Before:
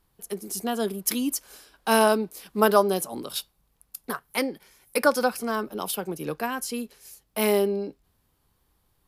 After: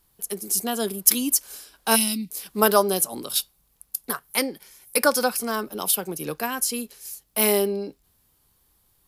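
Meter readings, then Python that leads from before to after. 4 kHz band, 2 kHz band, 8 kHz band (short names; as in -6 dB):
+5.5 dB, +1.0 dB, +9.5 dB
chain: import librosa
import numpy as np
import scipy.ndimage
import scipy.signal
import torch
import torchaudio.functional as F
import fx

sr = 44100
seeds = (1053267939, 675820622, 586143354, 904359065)

y = fx.spec_box(x, sr, start_s=1.96, length_s=0.35, low_hz=300.0, high_hz=1900.0, gain_db=-25)
y = fx.high_shelf(y, sr, hz=4100.0, db=11.0)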